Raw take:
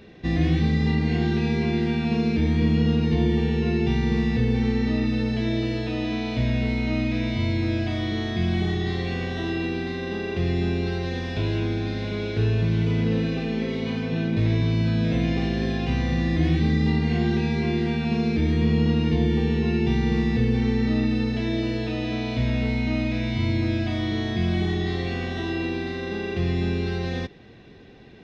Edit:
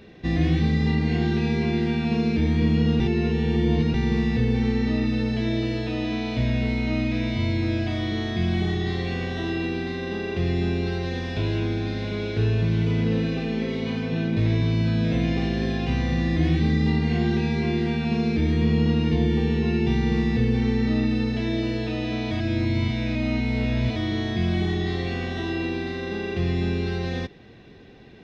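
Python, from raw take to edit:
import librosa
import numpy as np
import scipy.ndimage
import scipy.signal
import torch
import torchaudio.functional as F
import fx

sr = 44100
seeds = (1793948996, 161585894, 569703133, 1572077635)

y = fx.edit(x, sr, fx.reverse_span(start_s=3.0, length_s=0.94),
    fx.reverse_span(start_s=22.31, length_s=1.65), tone=tone)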